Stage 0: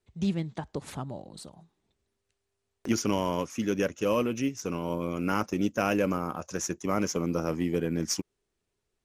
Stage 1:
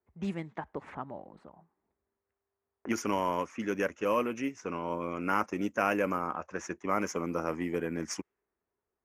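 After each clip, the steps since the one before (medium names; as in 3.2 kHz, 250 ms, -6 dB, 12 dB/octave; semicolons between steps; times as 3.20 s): high-pass 63 Hz; level-controlled noise filter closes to 1.2 kHz, open at -23.5 dBFS; graphic EQ 125/1000/2000/4000 Hz -9/+5/+7/-10 dB; trim -3.5 dB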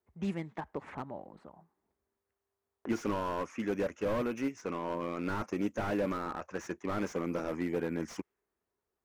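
slew-rate limiter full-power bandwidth 22 Hz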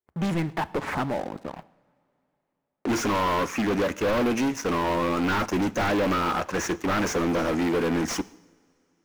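waveshaping leveller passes 5; two-slope reverb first 0.76 s, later 3.5 s, from -20 dB, DRR 17 dB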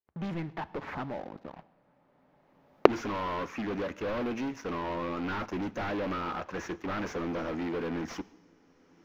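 recorder AGC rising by 24 dB/s; boxcar filter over 5 samples; trim -9 dB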